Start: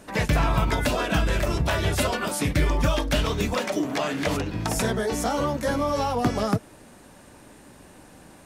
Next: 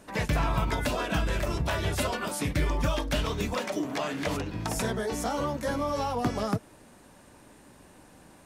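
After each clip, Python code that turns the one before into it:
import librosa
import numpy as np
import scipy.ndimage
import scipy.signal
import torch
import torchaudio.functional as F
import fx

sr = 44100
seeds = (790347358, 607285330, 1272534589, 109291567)

y = fx.peak_eq(x, sr, hz=1000.0, db=2.0, octaves=0.29)
y = F.gain(torch.from_numpy(y), -5.0).numpy()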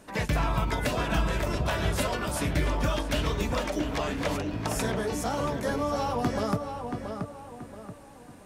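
y = fx.echo_filtered(x, sr, ms=679, feedback_pct=39, hz=2500.0, wet_db=-6)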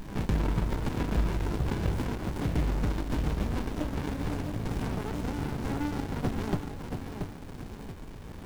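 y = fx.dmg_noise_colour(x, sr, seeds[0], colour='pink', level_db=-40.0)
y = fx.running_max(y, sr, window=65)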